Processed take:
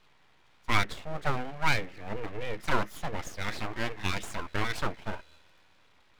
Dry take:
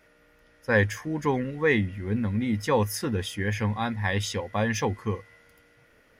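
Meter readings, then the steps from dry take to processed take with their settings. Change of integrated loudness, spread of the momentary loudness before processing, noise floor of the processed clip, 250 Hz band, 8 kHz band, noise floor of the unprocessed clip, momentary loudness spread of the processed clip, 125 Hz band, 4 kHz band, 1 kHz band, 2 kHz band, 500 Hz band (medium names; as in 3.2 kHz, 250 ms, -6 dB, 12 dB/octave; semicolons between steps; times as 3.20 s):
-6.0 dB, 6 LU, -62 dBFS, -11.5 dB, -7.0 dB, -60 dBFS, 11 LU, -9.0 dB, -1.0 dB, -1.0 dB, -3.5 dB, -10.0 dB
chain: three-band isolator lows -14 dB, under 230 Hz, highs -19 dB, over 4.3 kHz; full-wave rectifier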